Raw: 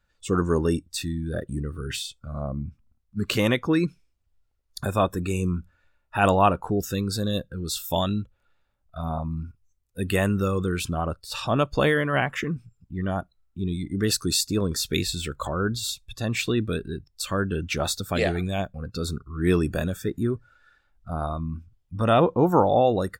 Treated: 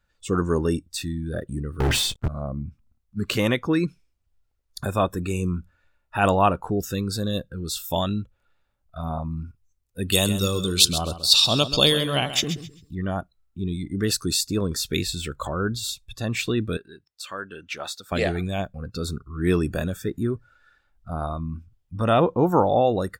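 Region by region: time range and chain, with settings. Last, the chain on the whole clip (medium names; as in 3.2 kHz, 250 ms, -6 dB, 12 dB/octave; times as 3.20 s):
1.80–2.28 s: tilt shelf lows +6.5 dB, about 1.3 kHz + waveshaping leveller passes 5
10.12–12.95 s: resonant high shelf 2.7 kHz +13.5 dB, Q 3 + feedback delay 132 ms, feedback 25%, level -12 dB
16.77–18.12 s: high-pass 1.3 kHz 6 dB/octave + treble shelf 5 kHz -10.5 dB
whole clip: none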